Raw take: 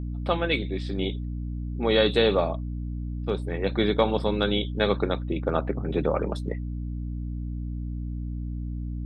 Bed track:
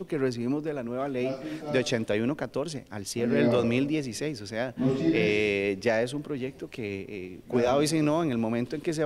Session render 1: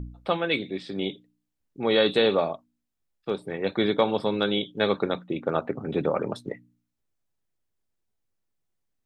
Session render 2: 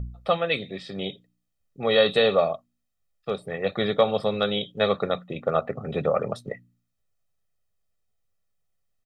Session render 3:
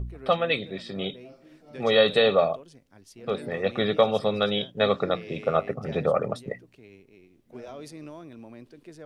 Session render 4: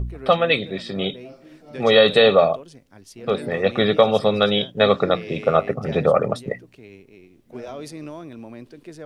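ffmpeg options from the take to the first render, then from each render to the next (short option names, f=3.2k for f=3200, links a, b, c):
-af "bandreject=f=60:t=h:w=4,bandreject=f=120:t=h:w=4,bandreject=f=180:t=h:w=4,bandreject=f=240:t=h:w=4,bandreject=f=300:t=h:w=4"
-af "aecho=1:1:1.6:0.68"
-filter_complex "[1:a]volume=-17dB[a];[0:a][a]amix=inputs=2:normalize=0"
-af "volume=6.5dB,alimiter=limit=-3dB:level=0:latency=1"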